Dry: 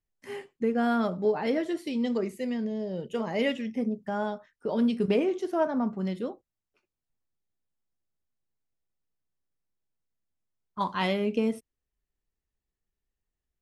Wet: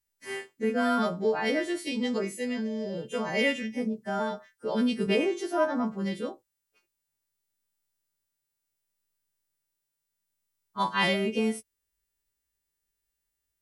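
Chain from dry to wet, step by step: partials quantised in pitch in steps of 2 st; dynamic bell 1.8 kHz, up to +4 dB, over -48 dBFS, Q 1.5

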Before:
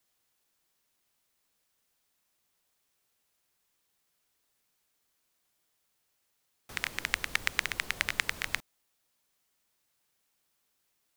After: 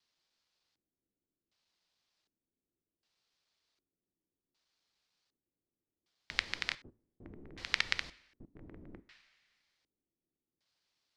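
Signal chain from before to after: slices played last to first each 150 ms, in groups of 6; two-slope reverb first 0.67 s, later 2.1 s, from -17 dB, DRR 15.5 dB; LFO low-pass square 0.66 Hz 320–4600 Hz; trim -5 dB

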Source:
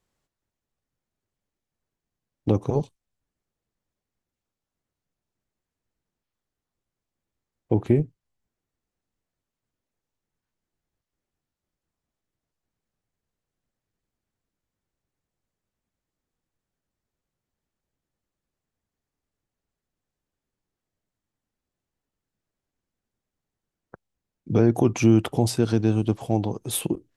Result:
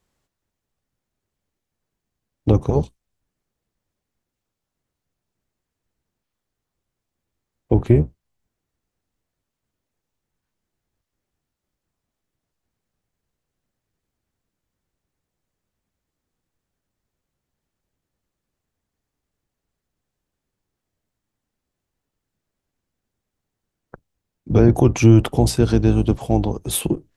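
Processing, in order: octave divider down 1 oct, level -5 dB; trim +4.5 dB

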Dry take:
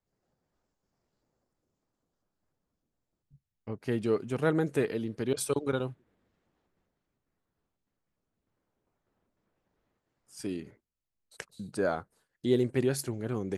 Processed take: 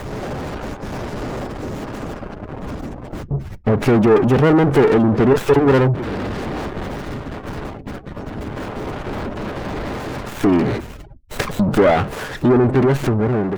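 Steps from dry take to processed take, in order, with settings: fade out at the end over 1.64 s; power-law waveshaper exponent 0.35; treble shelf 4.9 kHz -6.5 dB; in parallel at +2 dB: compression 6:1, threshold -31 dBFS, peak gain reduction 12.5 dB; on the sum: word length cut 8-bit, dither triangular; spectral gate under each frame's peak -30 dB strong; on a send at -14.5 dB: reverberation RT60 0.15 s, pre-delay 3 ms; on the sum: sliding maximum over 9 samples; trim +5 dB

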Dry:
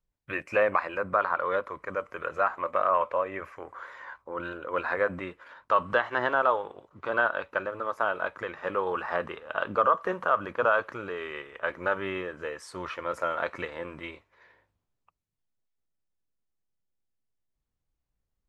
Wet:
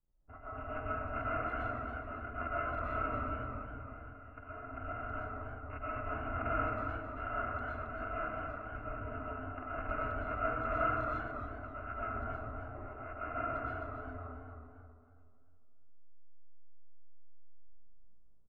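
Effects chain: bit-reversed sample order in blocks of 256 samples; Gaussian low-pass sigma 7.1 samples; speakerphone echo 320 ms, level -16 dB; algorithmic reverb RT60 2 s, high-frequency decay 0.3×, pre-delay 80 ms, DRR -8 dB; modulated delay 271 ms, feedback 35%, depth 108 cents, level -8 dB

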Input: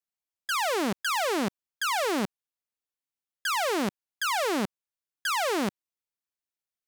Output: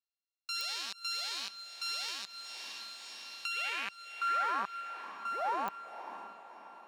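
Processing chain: sorted samples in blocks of 32 samples; band-pass sweep 4.3 kHz -> 890 Hz, 3.16–4.91 s; echo that smears into a reverb 568 ms, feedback 51%, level -11 dB; clicks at 0.61/5.68 s, -22 dBFS; 2.08–3.57 s: three bands compressed up and down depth 70%

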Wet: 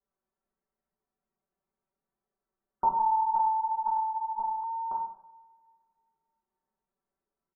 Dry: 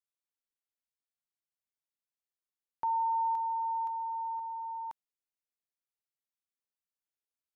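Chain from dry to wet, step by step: Bessel low-pass 790 Hz, order 2; comb 5.2 ms, depth 95%; loudest bins only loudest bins 64; two-slope reverb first 0.7 s, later 2.2 s, from -23 dB, DRR -5.5 dB; 2.99–4.64 s: monotone LPC vocoder at 8 kHz 220 Hz; trim +8.5 dB

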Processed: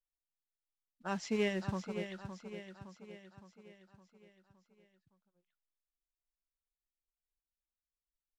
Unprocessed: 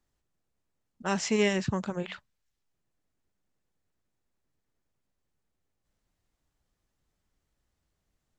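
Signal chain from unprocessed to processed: expander on every frequency bin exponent 1.5; feedback delay 564 ms, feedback 53%, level -9.5 dB; modulation noise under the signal 17 dB; distance through air 99 m; trim -6 dB

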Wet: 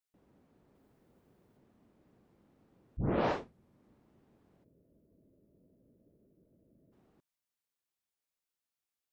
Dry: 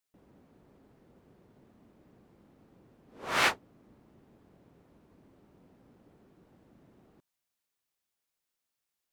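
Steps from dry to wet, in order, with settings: 0.75–1.57 s: treble shelf 8.5 kHz +8.5 dB; 2.97 s: tape start 0.89 s; 4.64–6.93 s: time-frequency box 670–10000 Hz -19 dB; trim -6.5 dB

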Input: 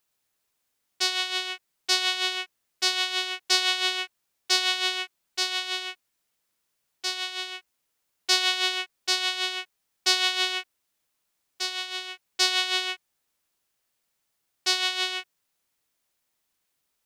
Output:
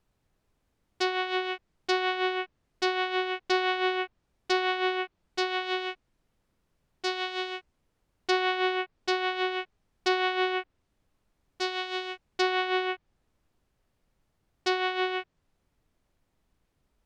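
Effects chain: tilt EQ -4.5 dB/octave; in parallel at -2.5 dB: peak limiter -18 dBFS, peak gain reduction 7.5 dB; on the sum: low-pass that closes with the level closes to 2.5 kHz, closed at -23 dBFS

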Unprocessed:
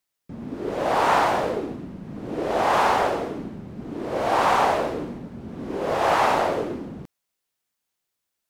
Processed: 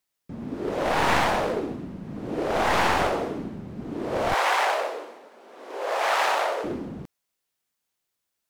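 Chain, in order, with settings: one-sided wavefolder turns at -21 dBFS; 4.34–6.64 s: high-pass 490 Hz 24 dB/octave

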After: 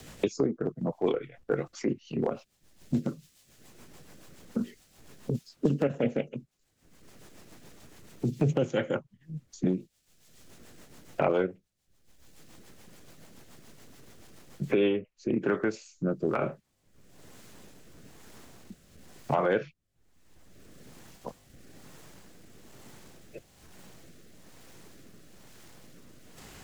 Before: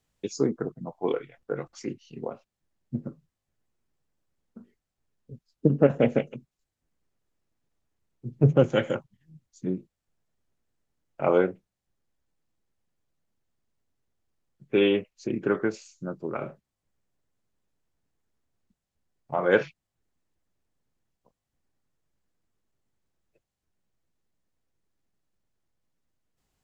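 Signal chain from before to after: transient shaper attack -7 dB, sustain -3 dB; rotary cabinet horn 7 Hz, later 1.1 Hz, at 14.51 s; three bands compressed up and down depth 100%; trim +4.5 dB

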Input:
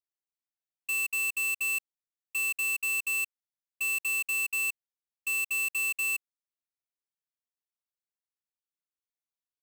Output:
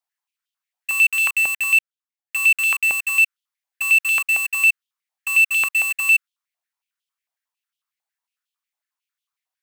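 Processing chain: 1.02–2.94 s: waveshaping leveller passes 5; step-sequenced high-pass 11 Hz 780–3100 Hz; trim +5.5 dB

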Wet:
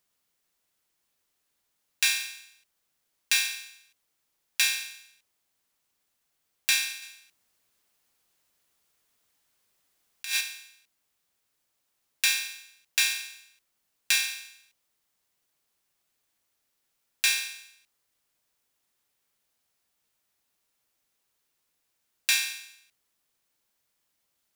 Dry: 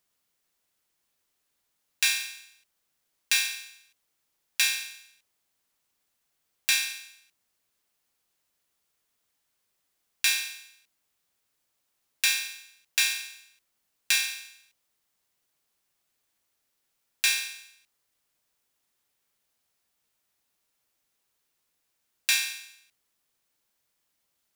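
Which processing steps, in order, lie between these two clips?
7.02–10.41 s: compressor with a negative ratio -28 dBFS, ratio -0.5

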